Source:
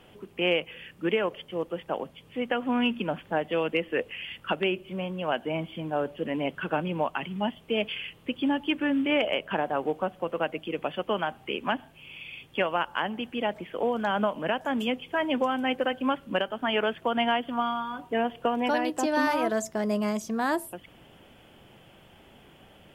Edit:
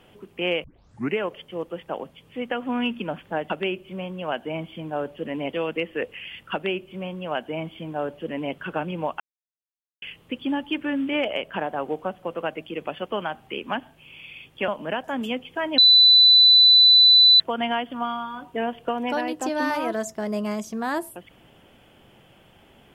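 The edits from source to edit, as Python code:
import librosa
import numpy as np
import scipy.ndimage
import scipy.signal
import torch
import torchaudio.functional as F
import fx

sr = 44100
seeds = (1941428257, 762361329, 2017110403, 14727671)

y = fx.edit(x, sr, fx.tape_start(start_s=0.64, length_s=0.53),
    fx.duplicate(start_s=4.5, length_s=2.03, to_s=3.5),
    fx.silence(start_s=7.17, length_s=0.82),
    fx.cut(start_s=12.65, length_s=1.6),
    fx.bleep(start_s=15.35, length_s=1.62, hz=3990.0, db=-10.0), tone=tone)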